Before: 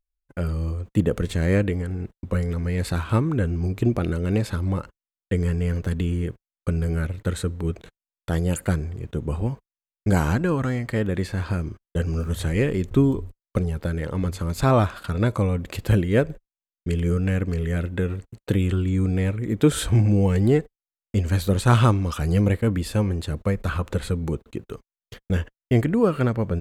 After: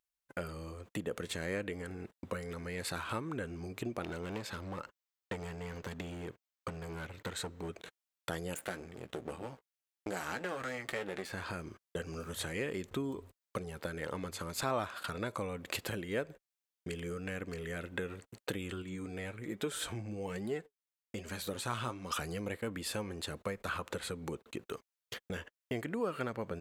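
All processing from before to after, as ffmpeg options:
-filter_complex "[0:a]asettb=1/sr,asplit=3[a][b][c];[a]atrim=end=4.024[d];[b]atrim=start=4.02:end=7.69,asetpts=PTS-STARTPTS,afade=t=in:d=0.004:c=qsin,afade=t=out:st=3.666:d=0.004:c=qsin,equalizer=f=10k:w=3.3:g=-11.5,aeval=exprs='clip(val(0),-1,0.0668)':c=same[e];[c]atrim=start=7.686[f];[d][e]acrossfade=d=0.004:c1=hsin:c2=qsin[g];[g][f]acrossfade=d=0.004:c1=qsin:c2=hsin,asettb=1/sr,asplit=3[h][i][j];[h]atrim=end=8.544[k];[i]atrim=start=8.54:end=11.31,asetpts=PTS-STARTPTS,afade=t=in:d=0.004:c=qsin,afade=t=out:st=2.766:d=0.004:c=qsin,aeval=exprs='max(val(0),0)':c=same,bandreject=f=1k:w=11,asplit=2[l][m];[m]adelay=16,volume=-10.5dB[n];[l][n]amix=inputs=2:normalize=0,atrim=end_sample=122157[o];[j]atrim=start=11.306[p];[k][o]acrossfade=d=0.004:c1=hsin:c2=qsin[q];[q][p]acrossfade=d=0.004:c1=qsin:c2=hsin,asettb=1/sr,asplit=3[r][s][t];[r]atrim=end=18.824[u];[s]atrim=start=18.82:end=22.11,asetpts=PTS-STARTPTS,afade=t=in:d=0.004:c=qsin,afade=t=out:st=3.286:d=0.004:c=qsin,deesser=0.5,flanger=delay=4.7:depth=4.5:regen=54:speed=1.2:shape=sinusoidal[v];[t]atrim=start=22.106[w];[u][v]acrossfade=d=0.004:c1=hsin:c2=qsin[x];[x][w]acrossfade=d=0.004:c1=qsin:c2=hsin,acompressor=threshold=-32dB:ratio=3,highpass=f=650:p=1,volume=2.5dB"

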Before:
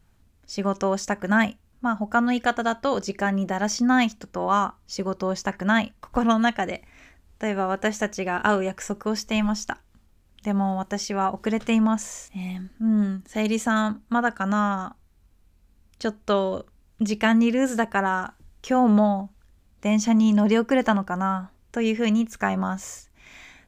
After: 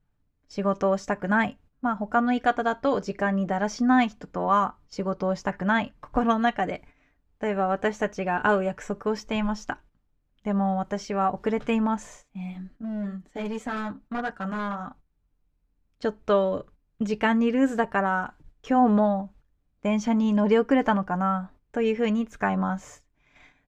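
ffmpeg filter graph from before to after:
-filter_complex "[0:a]asettb=1/sr,asplit=3[a][b][c];[a]atrim=end=12.154[d];[b]atrim=start=12.15:end=14.87,asetpts=PTS-STARTPTS,afade=t=in:d=0.004:c=qsin,afade=t=out:st=2.716:d=0.004:c=qsin,flanger=delay=5.3:depth=4.5:regen=-43:speed=1.8:shape=sinusoidal,volume=24.5dB,asoftclip=hard,volume=-24.5dB[e];[c]atrim=start=14.866[f];[d][e]acrossfade=d=0.004:c1=hsin:c2=qsin[g];[g][f]acrossfade=d=0.004:c1=qsin:c2=hsin,lowpass=f=1.7k:p=1,agate=range=-12dB:threshold=-48dB:ratio=16:detection=peak,aecho=1:1:6.8:0.42"

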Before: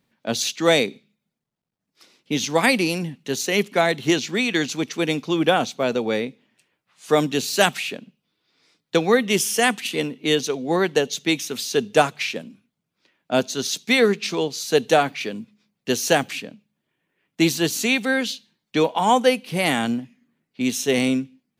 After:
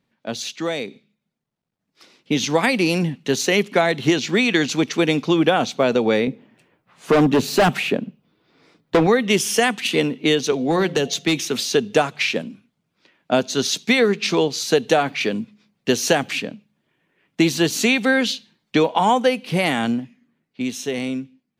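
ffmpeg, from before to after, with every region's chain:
-filter_complex "[0:a]asettb=1/sr,asplit=3[a][b][c];[a]atrim=end=6.274[d];[b]atrim=start=6.27:end=9.07,asetpts=PTS-STARTPTS,afade=t=in:d=0.004:c=qsin,afade=t=out:st=2.796:d=0.004:c=qsin,equalizer=f=5.4k:w=0.31:g=-12.5,acontrast=71,asoftclip=type=hard:threshold=-16dB[e];[c]atrim=start=9.066[f];[d][e]acrossfade=d=0.004:c1=hsin:c2=qsin[g];[g][f]acrossfade=d=0.004:c1=qsin:c2=hsin,asettb=1/sr,asplit=3[h][i][j];[h]atrim=end=10.524[k];[i]atrim=start=10.52:end=11.64,asetpts=PTS-STARTPTS,afade=t=in:d=0.004:c=qsin,afade=t=out:st=1.116:d=0.004:c=qsin,bandreject=f=174.2:t=h:w=4,bandreject=f=348.4:t=h:w=4,bandreject=f=522.6:t=h:w=4,bandreject=f=696.8:t=h:w=4,acrossover=split=230|3000[l][m][n];[m]acompressor=threshold=-22dB:ratio=10:attack=3.2:release=140:knee=2.83:detection=peak[o];[l][o][n]amix=inputs=3:normalize=0,asoftclip=type=hard:threshold=-18dB[p];[j]atrim=start=11.636[q];[k][p]acrossfade=d=0.004:c1=hsin:c2=qsin[r];[r][q]acrossfade=d=0.004:c1=qsin:c2=hsin,acompressor=threshold=-21dB:ratio=4,highshelf=f=7.4k:g=-10,dynaudnorm=f=180:g=21:m=11.5dB,volume=-1dB"

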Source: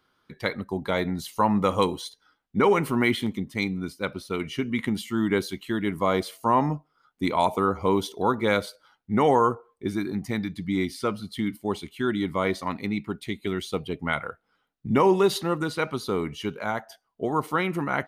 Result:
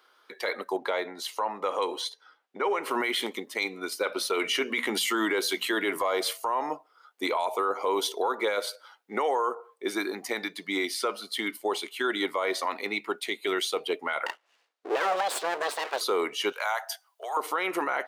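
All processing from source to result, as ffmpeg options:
-filter_complex "[0:a]asettb=1/sr,asplit=3[a][b][c];[a]atrim=end=0.764[d];[b]atrim=start=0.76:end=2.91,asetpts=PTS-STARTPTS,afade=t=in:d=0.004:c=qsin,afade=t=out:st=2.146:d=0.004:c=qsin,lowpass=f=3.8k:p=1,acompressor=threshold=-31dB:ratio=3:attack=3.2:release=140:knee=1:detection=peak[e];[c]atrim=start=2.906[f];[d][e]acrossfade=d=0.004:c1=hsin:c2=qsin[g];[g][f]acrossfade=d=0.004:c1=qsin:c2=hsin,asettb=1/sr,asplit=3[h][i][j];[h]atrim=end=3.924[k];[i]atrim=start=3.92:end=6.33,asetpts=PTS-STARTPTS,afade=t=in:d=0.004:c=qsin,afade=t=out:st=2.406:d=0.004:c=qsin,bandreject=f=60:t=h:w=6,bandreject=f=120:t=h:w=6,bandreject=f=180:t=h:w=6,bandreject=f=240:t=h:w=6,acontrast=77[l];[j]atrim=start=6.326[m];[k][l]acrossfade=d=0.004:c1=hsin:c2=qsin[n];[n][m]acrossfade=d=0.004:c1=qsin:c2=hsin,asettb=1/sr,asplit=3[o][p][q];[o]atrim=end=14.264[r];[p]atrim=start=14.26:end=16.01,asetpts=PTS-STARTPTS,afade=t=in:d=0.004:c=qsin,afade=t=out:st=1.746:d=0.004:c=qsin,lowpass=5.9k,aeval=exprs='abs(val(0))':c=same[s];[q]atrim=start=16.006[t];[r][s]acrossfade=d=0.004:c1=hsin:c2=qsin[u];[u][t]acrossfade=d=0.004:c1=qsin:c2=hsin,asettb=1/sr,asplit=3[v][w][x];[v]atrim=end=16.524[y];[w]atrim=start=16.52:end=17.37,asetpts=PTS-STARTPTS,afade=t=in:d=0.004:c=qsin,afade=t=out:st=0.846:d=0.004:c=qsin,highshelf=f=4k:g=8.5,acompressor=threshold=-29dB:ratio=3:attack=3.2:release=140:knee=1:detection=peak,highpass=f=680:w=0.5412,highpass=f=680:w=1.3066[z];[x]atrim=start=17.366[aa];[y][z]acrossfade=d=0.004:c1=hsin:c2=qsin[ab];[ab][aa]acrossfade=d=0.004:c1=qsin:c2=hsin,highpass=f=420:w=0.5412,highpass=f=420:w=1.3066,acompressor=threshold=-26dB:ratio=10,alimiter=level_in=1.5dB:limit=-24dB:level=0:latency=1:release=12,volume=-1.5dB,volume=7.5dB"

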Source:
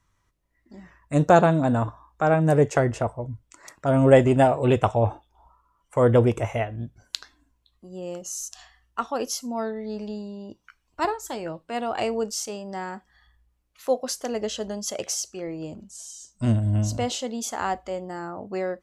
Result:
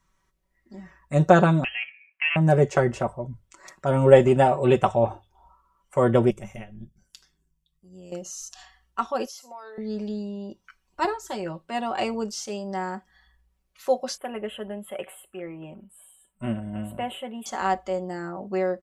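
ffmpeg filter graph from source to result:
-filter_complex "[0:a]asettb=1/sr,asplit=3[a][b][c];[a]atrim=end=1.644[d];[b]atrim=start=1.64:end=2.36,asetpts=PTS-STARTPTS,afade=t=in:d=0.004:c=qsin,afade=t=out:st=0.716:d=0.004:c=qsin,highpass=820,lowpass=f=2.9k:t=q:w=0.5098,lowpass=f=2.9k:t=q:w=0.6013,lowpass=f=2.9k:t=q:w=0.9,lowpass=f=2.9k:t=q:w=2.563,afreqshift=-3400[e];[c]atrim=start=2.356[f];[d][e]acrossfade=d=0.004:c1=hsin:c2=qsin[g];[g][f]acrossfade=d=0.004:c1=qsin:c2=hsin,asettb=1/sr,asplit=3[h][i][j];[h]atrim=end=6.304[k];[i]atrim=start=6.3:end=8.12,asetpts=PTS-STARTPTS,afade=t=in:d=0.004:c=qsin,afade=t=out:st=1.816:d=0.004:c=qsin,equalizer=f=850:w=0.32:g=-14.5,tremolo=f=100:d=0.788,asuperstop=centerf=4100:order=4:qfactor=7.4[l];[j]atrim=start=8.116[m];[k][l]acrossfade=d=0.004:c1=hsin:c2=qsin[n];[n][m]acrossfade=d=0.004:c1=qsin:c2=hsin,asettb=1/sr,asplit=3[o][p][q];[o]atrim=end=9.264[r];[p]atrim=start=9.26:end=9.78,asetpts=PTS-STARTPTS,afade=t=in:d=0.004:c=qsin,afade=t=out:st=0.516:d=0.004:c=qsin,highpass=f=490:w=0.5412,highpass=f=490:w=1.3066,acompressor=threshold=-36dB:ratio=6:attack=3.2:release=140:knee=1:detection=peak[s];[q]atrim=start=9.776[t];[r][s]acrossfade=d=0.004:c1=hsin:c2=qsin[u];[u][t]acrossfade=d=0.004:c1=qsin:c2=hsin,asettb=1/sr,asplit=3[v][w][x];[v]atrim=end=14.174[y];[w]atrim=start=14.17:end=17.46,asetpts=PTS-STARTPTS,afade=t=in:d=0.004:c=qsin,afade=t=out:st=3.286:d=0.004:c=qsin,asuperstop=centerf=5400:order=8:qfactor=0.87,lowshelf=f=470:g=-7[z];[x]atrim=start=17.456[aa];[y][z]acrossfade=d=0.004:c1=hsin:c2=qsin[ab];[ab][aa]acrossfade=d=0.004:c1=qsin:c2=hsin,acrossover=split=6000[ac][ad];[ad]acompressor=threshold=-46dB:ratio=4:attack=1:release=60[ae];[ac][ae]amix=inputs=2:normalize=0,bandreject=f=50:t=h:w=6,bandreject=f=100:t=h:w=6,aecho=1:1:5.3:0.66,volume=-1dB"

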